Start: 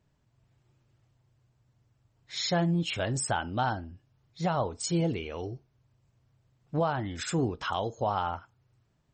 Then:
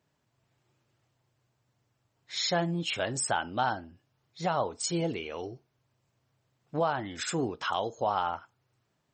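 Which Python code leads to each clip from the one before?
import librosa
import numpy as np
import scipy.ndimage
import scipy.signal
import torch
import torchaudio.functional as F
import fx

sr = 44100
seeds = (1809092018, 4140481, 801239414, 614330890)

y = fx.highpass(x, sr, hz=330.0, slope=6)
y = y * 10.0 ** (1.5 / 20.0)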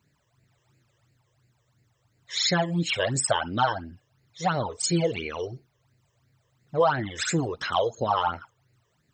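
y = fx.phaser_stages(x, sr, stages=12, low_hz=230.0, high_hz=1100.0, hz=2.9, feedback_pct=35)
y = y * 10.0 ** (8.5 / 20.0)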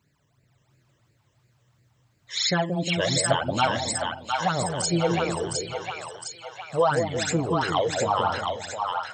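y = fx.echo_split(x, sr, split_hz=660.0, low_ms=178, high_ms=710, feedback_pct=52, wet_db=-3)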